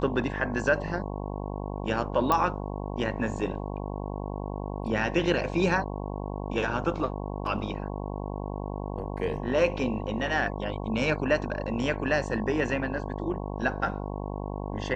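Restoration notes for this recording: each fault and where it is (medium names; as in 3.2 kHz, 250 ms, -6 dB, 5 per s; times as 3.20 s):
buzz 50 Hz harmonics 22 -34 dBFS
2.32 s: pop -11 dBFS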